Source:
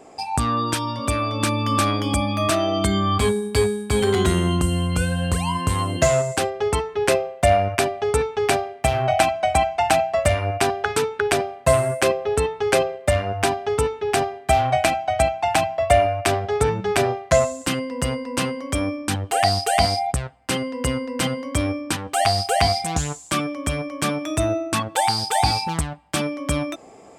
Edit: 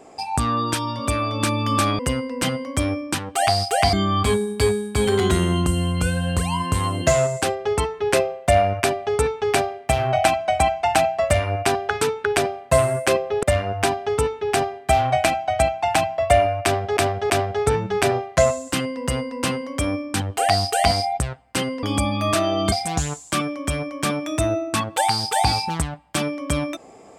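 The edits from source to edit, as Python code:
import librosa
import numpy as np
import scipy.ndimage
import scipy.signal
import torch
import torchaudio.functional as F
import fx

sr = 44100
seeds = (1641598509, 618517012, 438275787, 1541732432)

y = fx.edit(x, sr, fx.swap(start_s=1.99, length_s=0.89, other_s=20.77, other_length_s=1.94),
    fx.cut(start_s=12.38, length_s=0.65),
    fx.repeat(start_s=16.24, length_s=0.33, count=3), tone=tone)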